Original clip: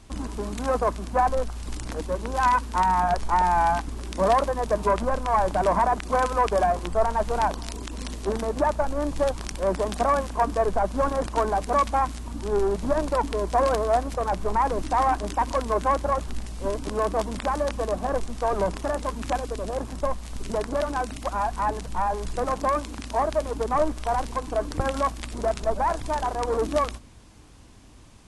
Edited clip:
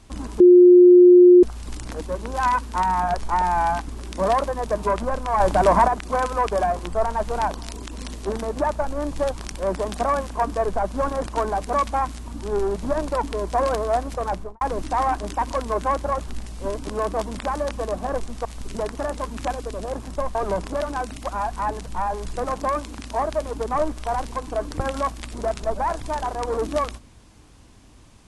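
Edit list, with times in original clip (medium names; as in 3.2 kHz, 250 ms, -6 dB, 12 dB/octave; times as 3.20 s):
0.40–1.43 s: bleep 357 Hz -6.5 dBFS
5.40–5.88 s: gain +5.5 dB
14.30–14.61 s: studio fade out
18.45–18.80 s: swap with 20.20–20.70 s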